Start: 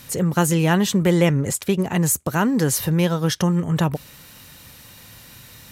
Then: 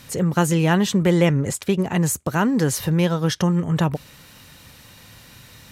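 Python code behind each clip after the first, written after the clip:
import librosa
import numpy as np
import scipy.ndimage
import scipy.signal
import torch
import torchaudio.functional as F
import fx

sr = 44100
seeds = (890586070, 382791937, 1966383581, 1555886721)

y = fx.high_shelf(x, sr, hz=10000.0, db=-9.5)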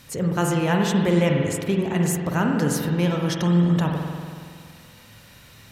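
y = fx.rev_spring(x, sr, rt60_s=2.1, pass_ms=(46,), chirp_ms=75, drr_db=1.0)
y = F.gain(torch.from_numpy(y), -4.0).numpy()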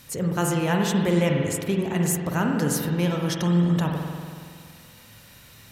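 y = fx.high_shelf(x, sr, hz=7900.0, db=7.0)
y = F.gain(torch.from_numpy(y), -2.0).numpy()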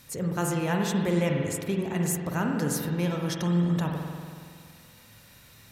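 y = fx.notch(x, sr, hz=3000.0, q=18.0)
y = F.gain(torch.from_numpy(y), -4.0).numpy()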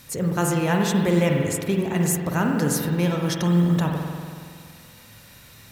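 y = fx.mod_noise(x, sr, seeds[0], snr_db=35)
y = F.gain(torch.from_numpy(y), 5.5).numpy()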